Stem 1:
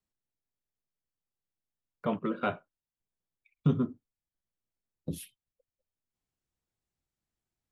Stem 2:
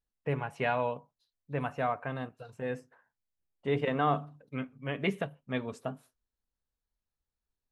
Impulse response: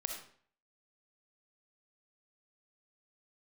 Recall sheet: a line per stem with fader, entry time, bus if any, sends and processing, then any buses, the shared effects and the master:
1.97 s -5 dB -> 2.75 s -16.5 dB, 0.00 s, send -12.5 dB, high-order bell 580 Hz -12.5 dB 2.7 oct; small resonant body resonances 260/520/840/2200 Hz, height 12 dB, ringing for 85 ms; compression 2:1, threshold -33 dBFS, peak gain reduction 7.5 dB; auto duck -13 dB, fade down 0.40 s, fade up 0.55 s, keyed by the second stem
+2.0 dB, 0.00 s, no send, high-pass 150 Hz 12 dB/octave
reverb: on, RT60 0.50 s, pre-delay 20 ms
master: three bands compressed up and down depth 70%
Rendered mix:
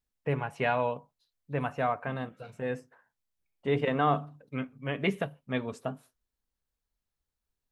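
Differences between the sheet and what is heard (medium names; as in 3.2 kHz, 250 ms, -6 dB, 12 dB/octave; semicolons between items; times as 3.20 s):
stem 2: missing high-pass 150 Hz 12 dB/octave; master: missing three bands compressed up and down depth 70%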